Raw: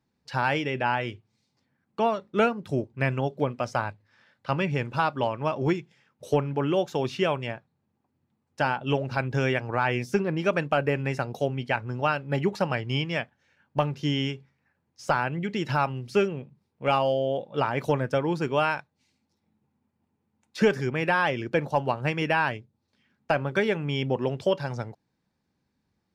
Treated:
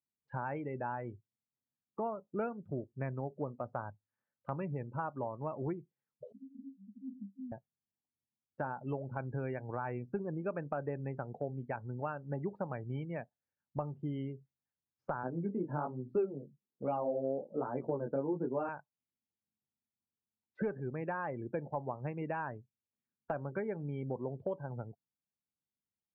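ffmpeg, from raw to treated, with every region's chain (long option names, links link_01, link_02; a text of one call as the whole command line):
ffmpeg -i in.wav -filter_complex "[0:a]asettb=1/sr,asplit=3[link_01][link_02][link_03];[link_01]atrim=end=6.324[link_04];[link_02]atrim=start=6.32:end=7.52,asetpts=PTS-STARTPTS,afade=type=in:duration=0.004:curve=qsin,afade=type=out:start_time=1.196:duration=0.004:curve=qsin,aeval=exprs='val(0)+0.5*0.0355*sgn(val(0))':channel_layout=same,acompressor=threshold=-26dB:ratio=2.5:attack=3.2:release=140:knee=1:detection=peak,asuperpass=centerf=230:order=20:qfactor=3.1[link_05];[link_03]atrim=start=7.516[link_06];[link_04][link_05]acrossfade=duration=0.004:curve1=hsin:curve2=qsin[link_07];[link_07][link_06]acrossfade=duration=0.004:curve1=qsin:curve2=hsin,asettb=1/sr,asplit=3[link_08][link_09][link_10];[link_08]atrim=end=15.234[link_11];[link_09]atrim=start=15.23:end=18.69,asetpts=PTS-STARTPTS,afade=type=in:duration=0.004:curve=qsin,afade=type=out:start_time=3.456:duration=0.004:curve=qsin,equalizer=frequency=290:width_type=o:width=2.5:gain=11.5,flanger=delay=15.5:depth=6.9:speed=1.2,highpass=160,lowpass=7200[link_12];[link_10]atrim=start=18.686[link_13];[link_11][link_12]acrossfade=duration=0.004:curve1=hsin:curve2=qsin[link_14];[link_14][link_13]acrossfade=duration=0.004:curve1=qsin:curve2=hsin,lowpass=1300,afftdn=noise_reduction=25:noise_floor=-37,acompressor=threshold=-40dB:ratio=2,volume=-2dB" out.wav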